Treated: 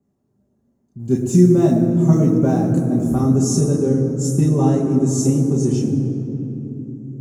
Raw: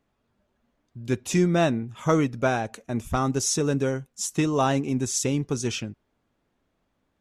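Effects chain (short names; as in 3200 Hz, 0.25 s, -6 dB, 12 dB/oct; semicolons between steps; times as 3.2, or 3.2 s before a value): 0.99–3.11 G.711 law mismatch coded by mu; EQ curve 100 Hz 0 dB, 290 Hz +6 dB, 1000 Hz -9 dB, 3300 Hz -18 dB, 7100 Hz +5 dB; reverb RT60 3.5 s, pre-delay 3 ms, DRR -4.5 dB; gain -9.5 dB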